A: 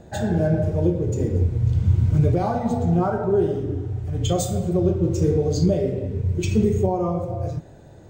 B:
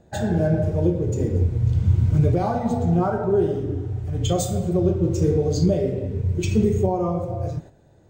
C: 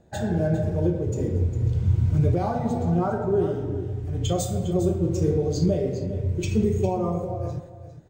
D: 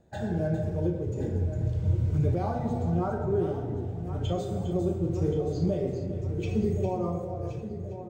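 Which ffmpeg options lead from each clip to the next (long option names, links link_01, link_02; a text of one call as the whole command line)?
ffmpeg -i in.wav -af "agate=range=-9dB:threshold=-37dB:ratio=16:detection=peak" out.wav
ffmpeg -i in.wav -af "aecho=1:1:404:0.237,volume=-3dB" out.wav
ffmpeg -i in.wav -filter_complex "[0:a]asplit=2[link_01][link_02];[link_02]adelay=1074,lowpass=frequency=2200:poles=1,volume=-11dB,asplit=2[link_03][link_04];[link_04]adelay=1074,lowpass=frequency=2200:poles=1,volume=0.53,asplit=2[link_05][link_06];[link_06]adelay=1074,lowpass=frequency=2200:poles=1,volume=0.53,asplit=2[link_07][link_08];[link_08]adelay=1074,lowpass=frequency=2200:poles=1,volume=0.53,asplit=2[link_09][link_10];[link_10]adelay=1074,lowpass=frequency=2200:poles=1,volume=0.53,asplit=2[link_11][link_12];[link_12]adelay=1074,lowpass=frequency=2200:poles=1,volume=0.53[link_13];[link_01][link_03][link_05][link_07][link_09][link_11][link_13]amix=inputs=7:normalize=0,acrossover=split=3800[link_14][link_15];[link_15]acompressor=threshold=-52dB:ratio=4:attack=1:release=60[link_16];[link_14][link_16]amix=inputs=2:normalize=0,volume=-5dB" out.wav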